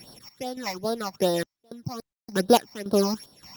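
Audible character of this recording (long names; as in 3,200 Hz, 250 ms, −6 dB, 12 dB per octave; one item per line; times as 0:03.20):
a buzz of ramps at a fixed pitch in blocks of 8 samples
phaser sweep stages 8, 2.5 Hz, lowest notch 420–2,300 Hz
sample-and-hold tremolo, depth 100%
Opus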